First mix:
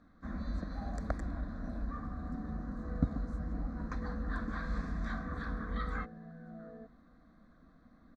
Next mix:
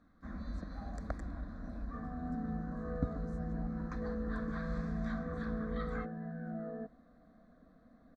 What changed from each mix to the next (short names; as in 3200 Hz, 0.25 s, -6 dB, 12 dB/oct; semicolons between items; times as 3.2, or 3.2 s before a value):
first sound -4.0 dB; second sound +7.5 dB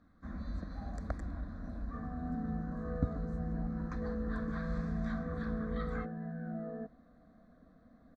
speech -5.0 dB; master: add bell 96 Hz +4.5 dB 1.3 oct